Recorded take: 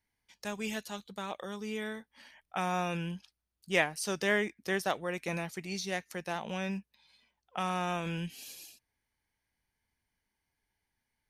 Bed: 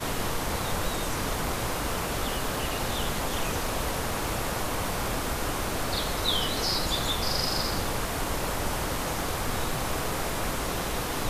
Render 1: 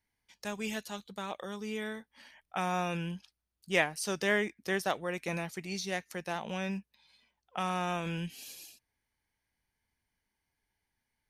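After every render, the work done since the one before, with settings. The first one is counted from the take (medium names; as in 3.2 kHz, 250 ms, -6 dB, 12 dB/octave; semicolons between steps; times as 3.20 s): no audible change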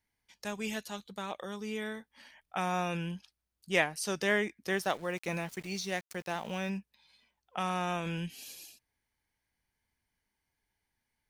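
4.69–6.70 s: small samples zeroed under -48.5 dBFS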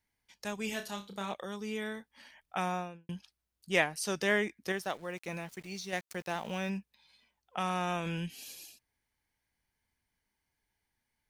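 0.66–1.34 s: flutter echo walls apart 5.2 m, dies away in 0.25 s; 2.59–3.09 s: studio fade out; 4.72–5.93 s: gain -4.5 dB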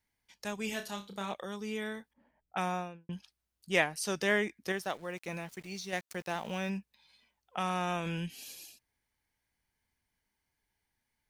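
2.13–3.13 s: level-controlled noise filter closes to 360 Hz, open at -32.5 dBFS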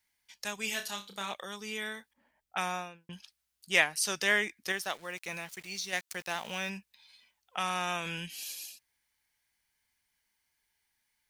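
tilt shelf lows -7 dB, about 920 Hz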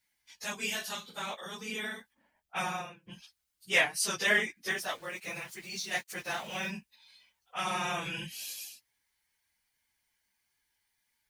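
phase randomisation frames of 50 ms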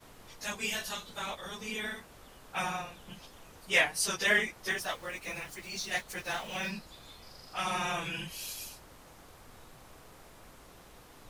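add bed -24.5 dB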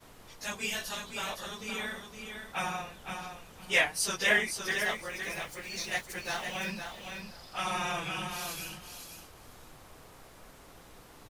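feedback delay 513 ms, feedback 17%, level -6.5 dB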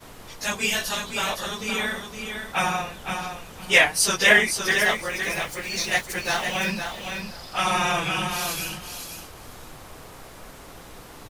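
trim +10 dB; peak limiter -3 dBFS, peak gain reduction 2.5 dB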